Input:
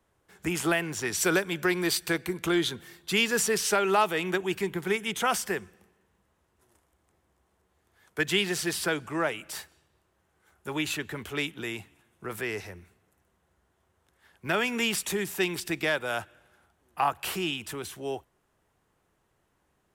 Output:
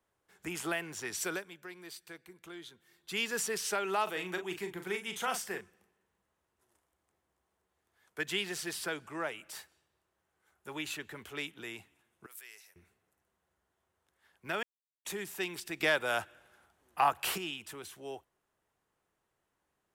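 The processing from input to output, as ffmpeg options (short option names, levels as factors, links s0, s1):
-filter_complex "[0:a]asettb=1/sr,asplit=3[s0][s1][s2];[s0]atrim=end=4.034[s3];[s1]atrim=start=4.03:end=5.61,asetpts=PTS-STARTPTS,afade=t=in:d=0.004:c=qsin,afade=t=out:st=1.576:d=0.004:c=qsin,asplit=2[s4][s5];[s5]adelay=39,volume=0.398[s6];[s4][s6]amix=inputs=2:normalize=0,atrim=end_sample=69678[s7];[s2]atrim=start=5.606[s8];[s3][s7]acrossfade=d=0.004:c1=hsin:c2=qsin[s9];[s9][s8]acrossfade=d=0.004:c1=qsin:c2=hsin,asettb=1/sr,asplit=3[s10][s11][s12];[s10]atrim=end=12.264[s13];[s11]atrim=start=12.26:end=12.76,asetpts=PTS-STARTPTS,afade=t=in:d=0.004:c=qsin,afade=t=out:st=0.496:d=0.004:c=qsin,aderivative[s14];[s12]atrim=start=12.756[s15];[s13][s14]acrossfade=d=0.004:c1=hsin:c2=qsin[s16];[s16][s15]acrossfade=d=0.004:c1=qsin:c2=hsin,asettb=1/sr,asplit=3[s17][s18][s19];[s17]atrim=end=15.804[s20];[s18]atrim=start=15.8:end=17.38,asetpts=PTS-STARTPTS,afade=t=in:d=0.004:c=qsin,afade=t=out:st=1.576:d=0.004:c=qsin,acontrast=86[s21];[s19]atrim=start=17.376[s22];[s20][s21]acrossfade=d=0.004:c1=hsin:c2=qsin[s23];[s23][s22]acrossfade=d=0.004:c1=qsin:c2=hsin,asplit=5[s24][s25][s26][s27][s28];[s24]atrim=end=1.57,asetpts=PTS-STARTPTS,afade=t=out:st=1.15:d=0.42:silence=0.237137[s29];[s25]atrim=start=1.57:end=2.84,asetpts=PTS-STARTPTS,volume=0.237[s30];[s26]atrim=start=2.84:end=14.63,asetpts=PTS-STARTPTS,afade=t=in:d=0.42:silence=0.237137,afade=t=out:st=11.786:d=0.004:c=hsin[s31];[s27]atrim=start=14.63:end=15.05,asetpts=PTS-STARTPTS,volume=0[s32];[s28]atrim=start=15.05,asetpts=PTS-STARTPTS,afade=t=in:d=0.004:c=hsin[s33];[s29][s30][s31][s32][s33]concat=n=5:v=0:a=1,lowshelf=f=270:g=-7,volume=0.422"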